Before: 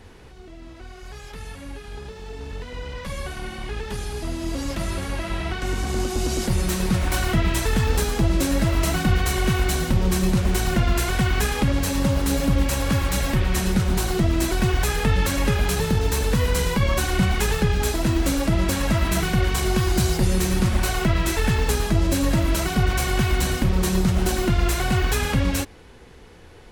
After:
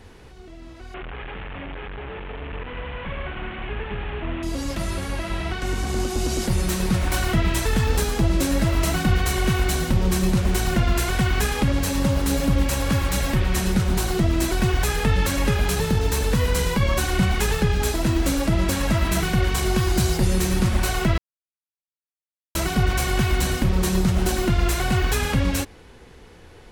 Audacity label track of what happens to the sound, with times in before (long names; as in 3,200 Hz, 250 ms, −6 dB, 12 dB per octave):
0.940000	4.430000	linear delta modulator 16 kbit/s, step −27.5 dBFS
21.180000	22.550000	silence